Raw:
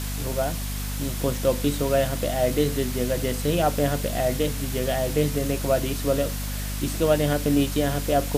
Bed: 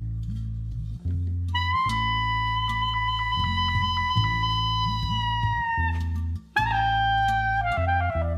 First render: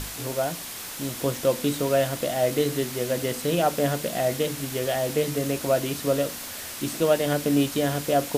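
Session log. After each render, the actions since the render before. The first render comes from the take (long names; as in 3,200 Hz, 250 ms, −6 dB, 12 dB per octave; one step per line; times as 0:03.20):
mains-hum notches 50/100/150/200/250/300 Hz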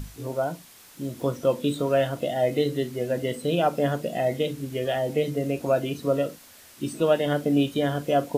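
noise reduction from a noise print 14 dB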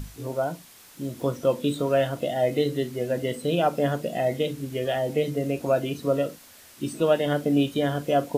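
no processing that can be heard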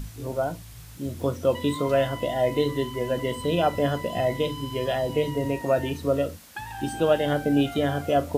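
mix in bed −13.5 dB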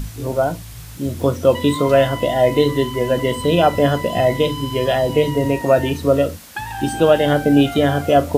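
level +8.5 dB
brickwall limiter −2 dBFS, peak gain reduction 1.5 dB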